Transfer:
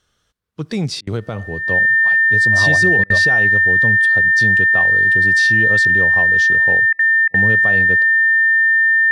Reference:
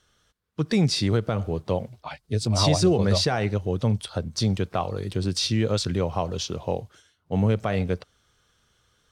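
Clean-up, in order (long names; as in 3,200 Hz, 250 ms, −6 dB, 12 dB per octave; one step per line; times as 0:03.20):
notch filter 1,800 Hz, Q 30
repair the gap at 0:01.01/0:03.04/0:06.93/0:07.28, 59 ms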